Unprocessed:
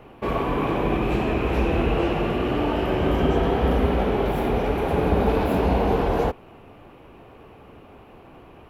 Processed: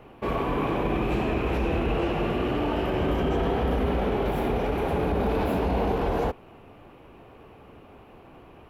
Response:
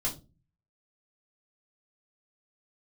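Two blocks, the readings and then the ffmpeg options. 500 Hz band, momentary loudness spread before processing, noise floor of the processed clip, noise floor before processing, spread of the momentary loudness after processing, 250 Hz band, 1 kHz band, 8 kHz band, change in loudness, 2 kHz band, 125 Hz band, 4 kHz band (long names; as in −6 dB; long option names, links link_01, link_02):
−3.5 dB, 3 LU, −50 dBFS, −47 dBFS, 2 LU, −3.5 dB, −3.5 dB, can't be measured, −3.5 dB, −3.0 dB, −4.0 dB, −3.0 dB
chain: -af "alimiter=limit=-14.5dB:level=0:latency=1:release=16,volume=-2.5dB"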